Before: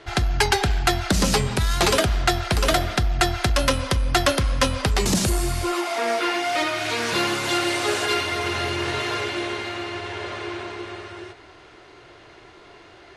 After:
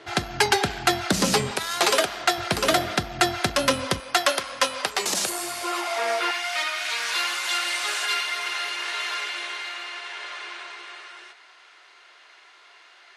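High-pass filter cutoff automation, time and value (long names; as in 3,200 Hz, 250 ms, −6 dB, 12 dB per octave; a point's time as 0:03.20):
170 Hz
from 0:01.51 440 Hz
from 0:02.38 170 Hz
from 0:04.00 570 Hz
from 0:06.31 1,200 Hz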